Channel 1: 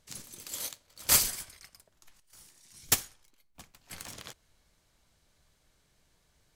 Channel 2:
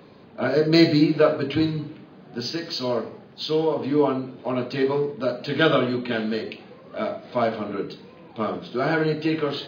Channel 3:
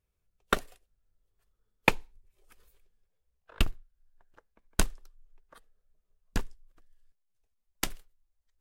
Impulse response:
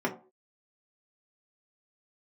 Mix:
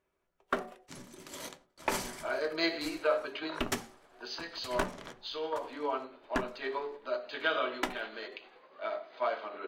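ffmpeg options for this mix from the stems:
-filter_complex "[0:a]aemphasis=mode=reproduction:type=50fm,agate=range=0.112:threshold=0.00112:ratio=16:detection=peak,adelay=800,volume=0.75,asplit=3[s0][s1][s2];[s1]volume=0.422[s3];[s2]volume=0.168[s4];[1:a]tremolo=f=10:d=0.34,highpass=790,highshelf=f=4200:g=-6.5,adelay=1850,volume=0.562,asplit=2[s5][s6];[s6]volume=0.112[s7];[2:a]asplit=2[s8][s9];[s9]highpass=f=720:p=1,volume=10,asoftclip=type=tanh:threshold=0.75[s10];[s8][s10]amix=inputs=2:normalize=0,lowpass=f=1500:p=1,volume=0.501,volume=0.531,asplit=2[s11][s12];[s12]volume=0.335[s13];[3:a]atrim=start_sample=2205[s14];[s3][s7][s13]amix=inputs=3:normalize=0[s15];[s15][s14]afir=irnorm=-1:irlink=0[s16];[s4]aecho=0:1:920|1840|2760|3680|4600:1|0.39|0.152|0.0593|0.0231[s17];[s0][s5][s11][s16][s17]amix=inputs=5:normalize=0,alimiter=limit=0.141:level=0:latency=1:release=316"

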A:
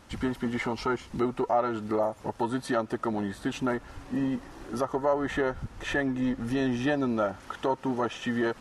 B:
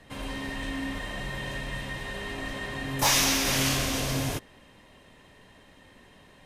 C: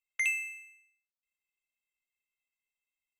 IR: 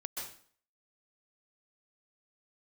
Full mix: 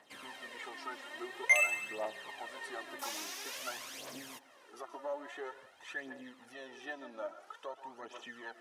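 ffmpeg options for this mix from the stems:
-filter_complex "[0:a]volume=0.141,asplit=2[s0][s1];[s1]volume=0.422[s2];[1:a]acompressor=threshold=0.0178:ratio=3,volume=0.335[s3];[2:a]adelay=1300,volume=1.06[s4];[3:a]atrim=start_sample=2205[s5];[s2][s5]afir=irnorm=-1:irlink=0[s6];[s0][s3][s4][s6]amix=inputs=4:normalize=0,highpass=540,aphaser=in_gain=1:out_gain=1:delay=3.7:decay=0.59:speed=0.49:type=triangular"

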